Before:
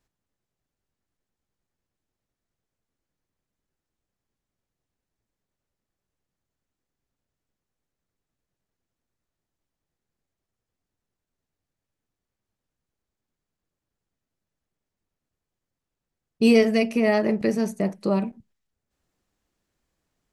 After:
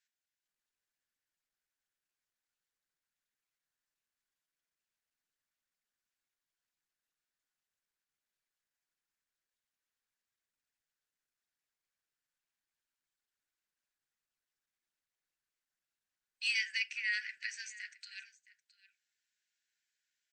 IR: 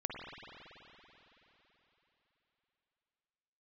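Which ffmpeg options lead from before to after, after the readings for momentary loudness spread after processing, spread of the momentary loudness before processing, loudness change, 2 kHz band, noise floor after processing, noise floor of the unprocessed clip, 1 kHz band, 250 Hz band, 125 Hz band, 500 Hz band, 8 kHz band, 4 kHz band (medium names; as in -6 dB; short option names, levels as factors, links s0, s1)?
17 LU, 9 LU, -14.0 dB, -3.5 dB, under -85 dBFS, under -85 dBFS, under -30 dB, under -40 dB, under -40 dB, under -40 dB, -5.5 dB, -3.5 dB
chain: -af "afftfilt=real='re*between(b*sr/4096,1400,8200)':imag='im*between(b*sr/4096,1400,8200)':win_size=4096:overlap=0.75,aecho=1:1:666:0.112,volume=0.708" -ar 48000 -c:a libopus -b:a 48k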